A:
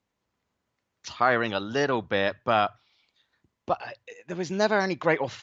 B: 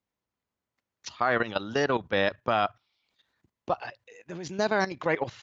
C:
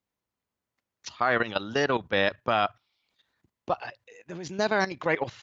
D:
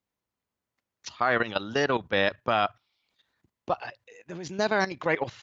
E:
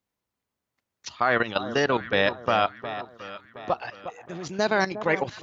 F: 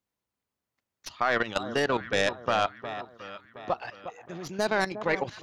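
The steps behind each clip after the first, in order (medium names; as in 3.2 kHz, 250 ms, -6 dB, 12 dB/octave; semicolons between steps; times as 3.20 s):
level held to a coarse grid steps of 13 dB; trim +2 dB
dynamic bell 2.8 kHz, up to +3 dB, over -38 dBFS, Q 0.79
no audible change
echo whose repeats swap between lows and highs 359 ms, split 1.2 kHz, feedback 64%, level -10.5 dB; trim +2 dB
tracing distortion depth 0.054 ms; trim -3 dB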